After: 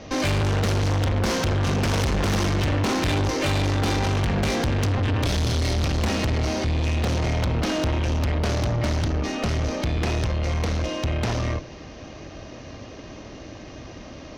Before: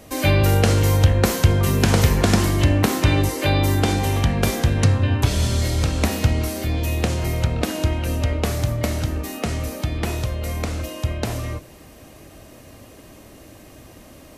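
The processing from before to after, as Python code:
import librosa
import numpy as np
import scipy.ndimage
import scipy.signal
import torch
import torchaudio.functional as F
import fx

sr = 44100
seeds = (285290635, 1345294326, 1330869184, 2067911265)

y = scipy.signal.sosfilt(scipy.signal.butter(16, 6400.0, 'lowpass', fs=sr, output='sos'), x)
y = fx.tube_stage(y, sr, drive_db=28.0, bias=0.55)
y = y * 10.0 ** (7.5 / 20.0)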